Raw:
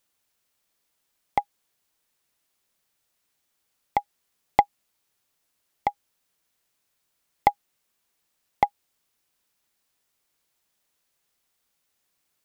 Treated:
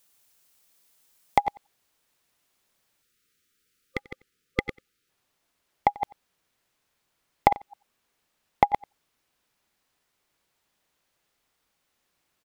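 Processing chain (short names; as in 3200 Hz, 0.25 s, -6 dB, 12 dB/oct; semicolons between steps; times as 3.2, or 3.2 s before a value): reverse delay 0.119 s, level -9 dB; high shelf 4900 Hz +7 dB, from 1.4 s -4 dB, from 3.99 s -9.5 dB; 3.03–5.09 spectral gain 520–1200 Hz -29 dB; compressor, threshold -18 dBFS, peak gain reduction 5.5 dB; echo 91 ms -22.5 dB; gain +4.5 dB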